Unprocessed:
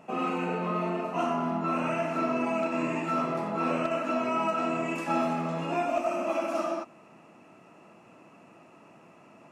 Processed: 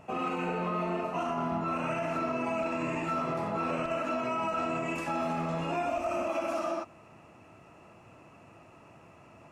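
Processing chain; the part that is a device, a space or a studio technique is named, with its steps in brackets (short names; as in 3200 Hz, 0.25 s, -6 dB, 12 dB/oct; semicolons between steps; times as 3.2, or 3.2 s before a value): car stereo with a boomy subwoofer (resonant low shelf 130 Hz +13 dB, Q 1.5; limiter -23 dBFS, peak gain reduction 6.5 dB)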